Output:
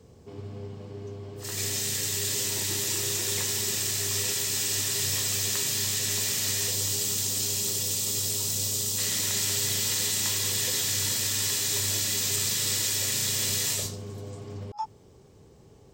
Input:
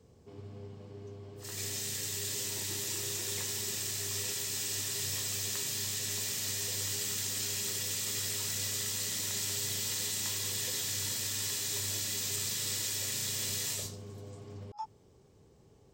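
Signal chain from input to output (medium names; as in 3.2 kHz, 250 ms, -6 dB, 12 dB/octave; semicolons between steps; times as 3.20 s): 6.70–8.97 s: peaking EQ 1.8 kHz -6 dB -> -14 dB 1.3 oct; trim +7.5 dB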